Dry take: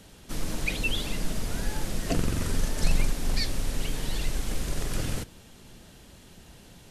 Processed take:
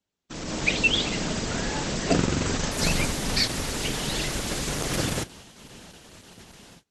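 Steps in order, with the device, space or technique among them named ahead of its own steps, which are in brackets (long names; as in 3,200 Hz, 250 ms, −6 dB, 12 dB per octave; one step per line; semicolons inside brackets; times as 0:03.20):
video call (high-pass filter 180 Hz 6 dB per octave; automatic gain control gain up to 9 dB; noise gate −44 dBFS, range −32 dB; Opus 12 kbit/s 48,000 Hz)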